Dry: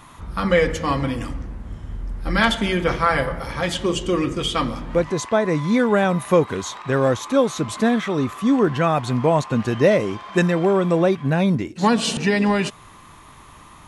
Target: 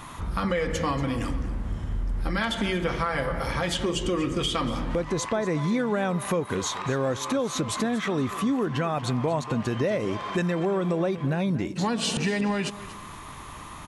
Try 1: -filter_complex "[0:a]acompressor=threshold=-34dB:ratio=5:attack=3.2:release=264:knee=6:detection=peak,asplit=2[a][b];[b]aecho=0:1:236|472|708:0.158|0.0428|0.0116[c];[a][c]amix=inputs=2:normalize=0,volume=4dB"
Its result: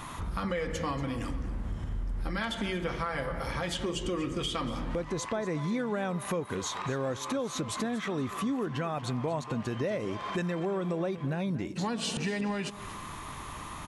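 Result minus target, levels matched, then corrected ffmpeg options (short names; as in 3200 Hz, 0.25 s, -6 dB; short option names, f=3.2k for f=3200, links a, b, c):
compressor: peak gain reduction +6 dB
-filter_complex "[0:a]acompressor=threshold=-26.5dB:ratio=5:attack=3.2:release=264:knee=6:detection=peak,asplit=2[a][b];[b]aecho=0:1:236|472|708:0.158|0.0428|0.0116[c];[a][c]amix=inputs=2:normalize=0,volume=4dB"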